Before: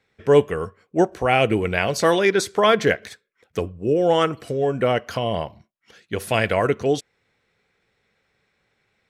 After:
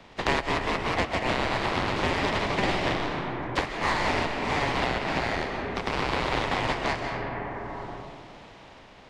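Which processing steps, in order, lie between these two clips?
compressing power law on the bin magnitudes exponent 0.25
high-pass filter 350 Hz 12 dB per octave
ring modulation 1,400 Hz
comb and all-pass reverb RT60 1.7 s, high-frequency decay 0.45×, pre-delay 90 ms, DRR 6 dB
delay with pitch and tempo change per echo 204 ms, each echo +1 semitone, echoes 3
head-to-tape spacing loss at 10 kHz 35 dB
multiband upward and downward compressor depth 100%

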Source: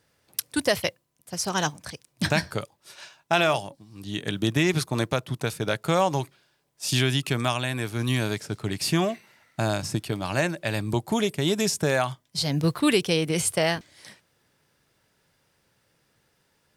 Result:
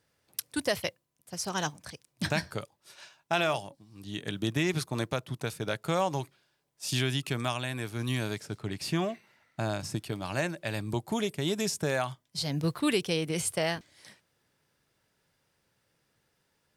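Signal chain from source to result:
0:08.58–0:09.80: parametric band 12,000 Hz −5.5 dB 1.9 octaves
level −6 dB

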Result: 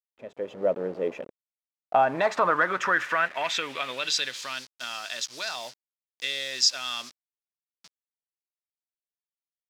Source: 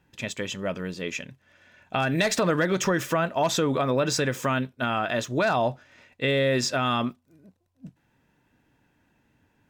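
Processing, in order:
hold until the input has moved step −36 dBFS
band-pass filter sweep 520 Hz → 5,100 Hz, 0:01.43–0:04.68
automatic gain control gain up to 12.5 dB
level −3 dB

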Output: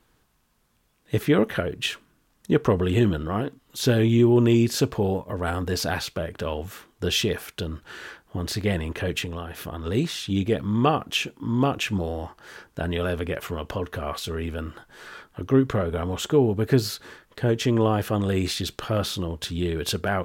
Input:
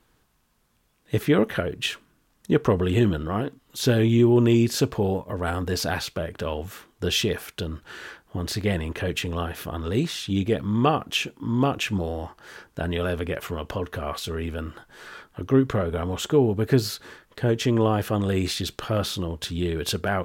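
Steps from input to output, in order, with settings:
0:09.24–0:09.86: downward compressor, threshold −29 dBFS, peak gain reduction 7.5 dB

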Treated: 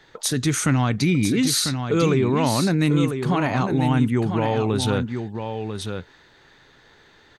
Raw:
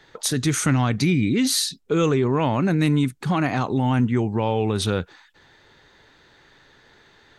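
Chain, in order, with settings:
single-tap delay 996 ms −7 dB

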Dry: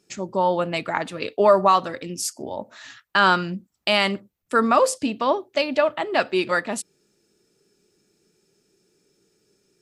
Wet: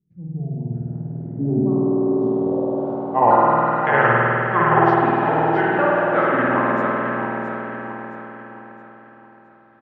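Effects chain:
pitch shifter swept by a sawtooth −9 semitones, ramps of 827 ms
mains-hum notches 50/100/150/200/250/300/350/400 Hz
spring reverb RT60 3.7 s, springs 50 ms, chirp 45 ms, DRR −6 dB
low-pass filter sweep 150 Hz → 1,500 Hz, 0:01.08–0:03.91
on a send: repeating echo 668 ms, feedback 40%, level −7 dB
on the sum: level −4 dB

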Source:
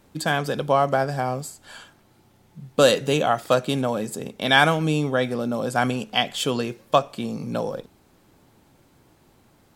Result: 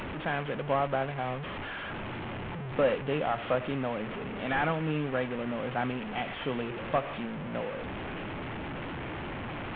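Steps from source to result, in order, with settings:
linear delta modulator 16 kbit/s, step −22.5 dBFS
level −8.5 dB

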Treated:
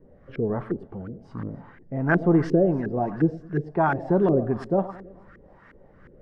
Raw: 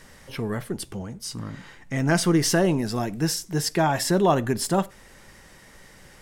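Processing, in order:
echo with a time of its own for lows and highs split 1,400 Hz, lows 107 ms, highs 288 ms, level −16 dB
auto-filter low-pass saw up 2.8 Hz 360–1,700 Hz
rotating-speaker cabinet horn 1.2 Hz

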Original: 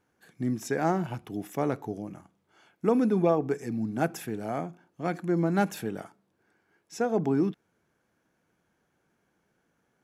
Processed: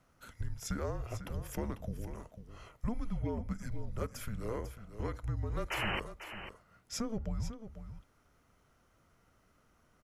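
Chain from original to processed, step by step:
downward compressor 4 to 1, threshold −40 dBFS, peak gain reduction 18.5 dB
sound drawn into the spectrogram noise, 0:05.70–0:06.00, 520–3,300 Hz −40 dBFS
frequency shifter −230 Hz
on a send: single-tap delay 496 ms −11 dB
on the sum: level +4.5 dB

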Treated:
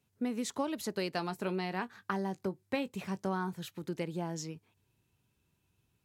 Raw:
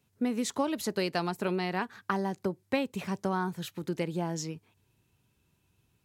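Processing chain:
0:01.12–0:03.54: double-tracking delay 21 ms −13 dB
level −4.5 dB

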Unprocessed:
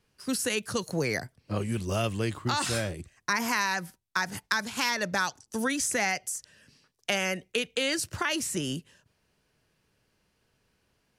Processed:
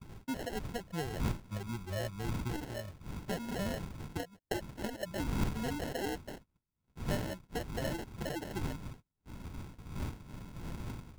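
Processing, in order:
spectral dynamics exaggerated over time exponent 2
wind on the microphone 170 Hz −37 dBFS
noise gate −45 dBFS, range −26 dB
decimation without filtering 37×
level −5 dB

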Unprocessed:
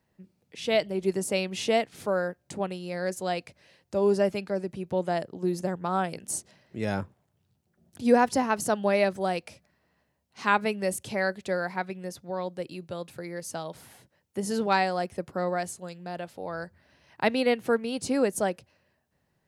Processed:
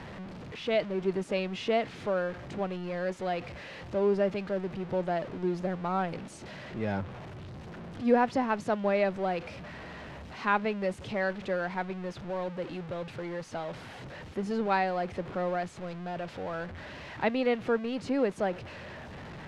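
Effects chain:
converter with a step at zero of −32.5 dBFS
low-pass filter 3,000 Hz 12 dB per octave
level −4 dB

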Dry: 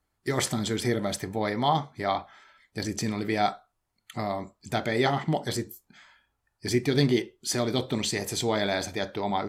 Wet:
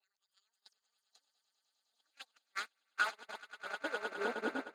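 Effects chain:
played backwards from end to start
wrong playback speed 7.5 ips tape played at 15 ips
downward compressor 6 to 1, threshold −32 dBFS, peak gain reduction 13.5 dB
band-pass filter sweep 4,600 Hz → 290 Hz, 0:01.60–0:04.60
echo that builds up and dies away 103 ms, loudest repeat 8, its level −8.5 dB
noise gate −38 dBFS, range −41 dB
level +5 dB

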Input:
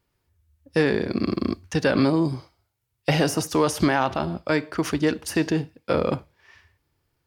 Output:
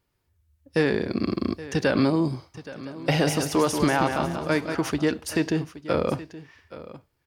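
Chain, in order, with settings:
single-tap delay 823 ms −16.5 dB
0:02.36–0:04.75: feedback echo with a swinging delay time 186 ms, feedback 31%, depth 64 cents, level −6.5 dB
level −1.5 dB

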